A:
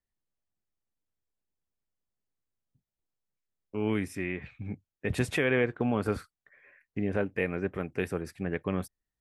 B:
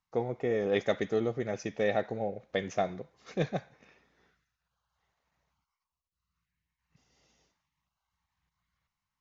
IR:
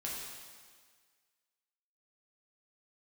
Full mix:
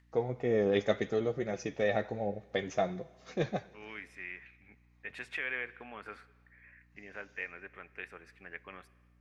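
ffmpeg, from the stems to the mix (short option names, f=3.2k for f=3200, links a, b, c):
-filter_complex "[0:a]acompressor=mode=upward:threshold=-46dB:ratio=2.5,bandpass=f=2k:t=q:w=1.4:csg=0,volume=-4.5dB,asplit=2[a][b];[b]volume=-18dB[c];[1:a]flanger=delay=5.2:depth=5.3:regen=47:speed=0.68:shape=triangular,aeval=exprs='val(0)+0.000447*(sin(2*PI*60*n/s)+sin(2*PI*2*60*n/s)/2+sin(2*PI*3*60*n/s)/3+sin(2*PI*4*60*n/s)/4+sin(2*PI*5*60*n/s)/5)':c=same,volume=2.5dB,asplit=2[d][e];[e]volume=-20.5dB[f];[2:a]atrim=start_sample=2205[g];[c][f]amix=inputs=2:normalize=0[h];[h][g]afir=irnorm=-1:irlink=0[i];[a][d][i]amix=inputs=3:normalize=0"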